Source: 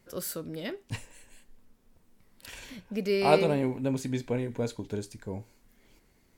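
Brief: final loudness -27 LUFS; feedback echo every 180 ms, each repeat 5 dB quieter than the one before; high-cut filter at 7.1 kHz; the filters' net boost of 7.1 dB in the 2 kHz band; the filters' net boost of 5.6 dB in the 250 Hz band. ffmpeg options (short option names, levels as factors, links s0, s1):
-af "lowpass=7100,equalizer=f=250:t=o:g=6.5,equalizer=f=2000:t=o:g=9,aecho=1:1:180|360|540|720|900|1080|1260:0.562|0.315|0.176|0.0988|0.0553|0.031|0.0173,volume=0.841"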